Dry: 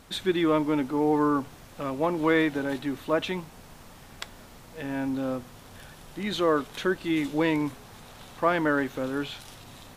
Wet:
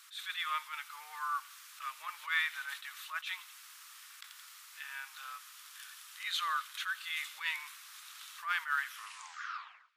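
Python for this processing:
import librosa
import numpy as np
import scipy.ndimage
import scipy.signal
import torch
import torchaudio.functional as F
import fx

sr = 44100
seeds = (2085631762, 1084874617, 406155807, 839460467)

p1 = fx.tape_stop_end(x, sr, length_s=1.15)
p2 = fx.dynamic_eq(p1, sr, hz=6400.0, q=0.91, threshold_db=-49.0, ratio=4.0, max_db=-3)
p3 = scipy.signal.sosfilt(scipy.signal.ellip(4, 1.0, 80, 1200.0, 'highpass', fs=sr, output='sos'), p2)
p4 = fx.high_shelf(p3, sr, hz=4100.0, db=6.5)
p5 = p4 + fx.echo_wet_highpass(p4, sr, ms=86, feedback_pct=58, hz=2100.0, wet_db=-17.5, dry=0)
p6 = fx.attack_slew(p5, sr, db_per_s=190.0)
y = F.gain(torch.from_numpy(p6), -2.0).numpy()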